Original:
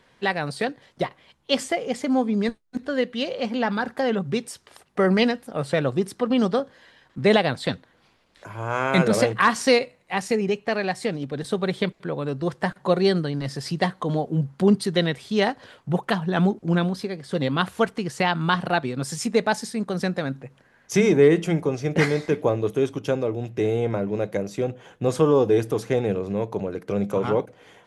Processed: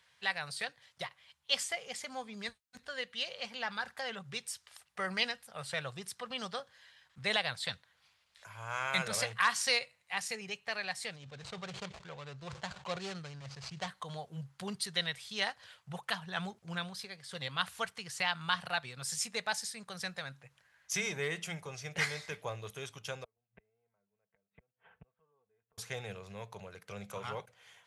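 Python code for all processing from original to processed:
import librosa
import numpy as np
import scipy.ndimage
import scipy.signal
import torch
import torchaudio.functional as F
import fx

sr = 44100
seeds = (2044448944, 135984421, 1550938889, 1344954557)

y = fx.chain(x, sr, fx.median_filter(points=25),
    fx.lowpass(hz=7700.0, slope=24),
    fx.sustainer(db_per_s=97.0), at=(11.16, 13.88))
y = fx.chain(y, sr, fx.gate_flip(shuts_db=-21.0, range_db=-38),
    fx.gaussian_blur(sigma=4.3),
    fx.comb(ms=4.5, depth=0.5), at=(23.24, 25.78))
y = scipy.signal.sosfilt(scipy.signal.butter(2, 71.0, 'highpass', fs=sr, output='sos'), y)
y = fx.tone_stack(y, sr, knobs='10-0-10')
y = y * 10.0 ** (-2.5 / 20.0)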